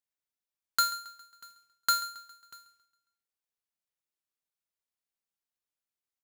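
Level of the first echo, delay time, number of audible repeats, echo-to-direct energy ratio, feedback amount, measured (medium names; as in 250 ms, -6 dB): -18.5 dB, 136 ms, 3, -17.5 dB, 49%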